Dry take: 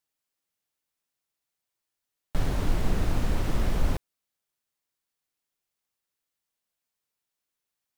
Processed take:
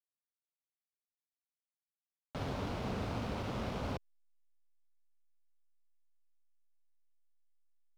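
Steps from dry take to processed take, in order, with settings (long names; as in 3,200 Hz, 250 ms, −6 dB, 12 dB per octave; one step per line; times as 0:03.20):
loudspeaker in its box 120–5,800 Hz, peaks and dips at 160 Hz −7 dB, 330 Hz −7 dB, 1,800 Hz −6 dB
slack as between gear wheels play −44.5 dBFS
level −3 dB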